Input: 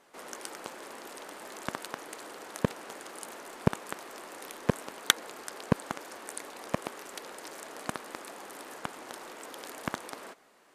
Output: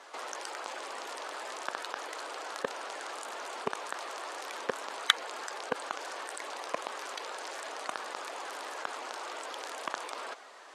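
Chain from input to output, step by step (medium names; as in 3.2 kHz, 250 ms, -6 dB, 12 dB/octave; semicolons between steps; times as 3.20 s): coarse spectral quantiser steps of 15 dB; in parallel at +2 dB: compressor with a negative ratio -50 dBFS, ratio -1; on the sum: band-pass 580–6700 Hz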